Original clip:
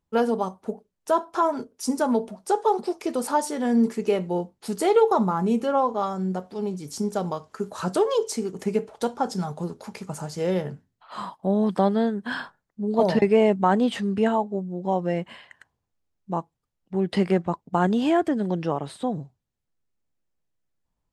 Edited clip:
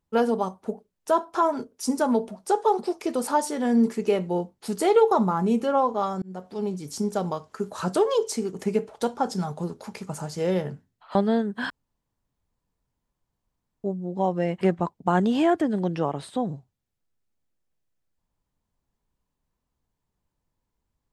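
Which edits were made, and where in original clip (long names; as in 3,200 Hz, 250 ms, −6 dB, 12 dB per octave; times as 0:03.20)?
0:06.22–0:06.54: fade in
0:11.15–0:11.83: remove
0:12.38–0:14.52: fill with room tone
0:15.29–0:17.28: remove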